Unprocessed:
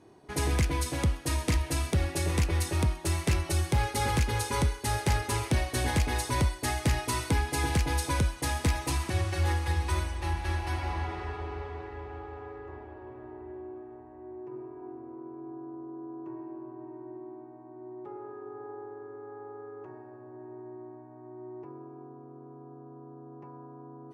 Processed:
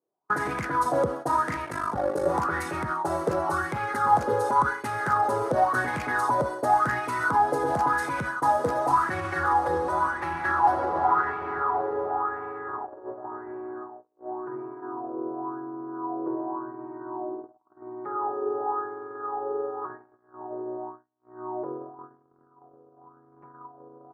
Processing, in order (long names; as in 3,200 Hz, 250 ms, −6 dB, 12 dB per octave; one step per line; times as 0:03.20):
high-pass filter 130 Hz 24 dB per octave
noise gate −44 dBFS, range −41 dB
high shelf with overshoot 1,800 Hz −10 dB, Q 3
brickwall limiter −28 dBFS, peak gain reduction 11.5 dB
0:01.65–0:02.26: ring modulation 25 Hz
auto-filter bell 0.92 Hz 490–2,400 Hz +17 dB
level +4.5 dB